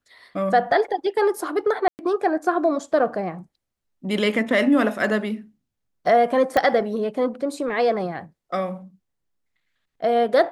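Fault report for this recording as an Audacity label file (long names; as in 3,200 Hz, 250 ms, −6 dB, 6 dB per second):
1.880000	1.990000	drop-out 109 ms
6.570000	6.570000	click −8 dBFS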